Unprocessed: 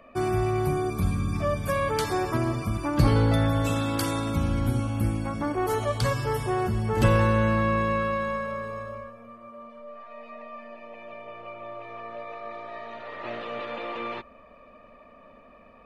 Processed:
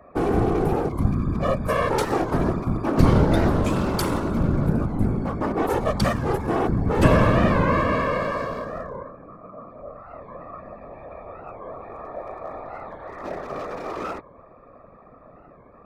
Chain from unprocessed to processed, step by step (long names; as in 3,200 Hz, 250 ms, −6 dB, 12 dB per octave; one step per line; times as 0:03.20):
adaptive Wiener filter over 15 samples
random phases in short frames
wow of a warped record 45 rpm, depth 160 cents
level +4 dB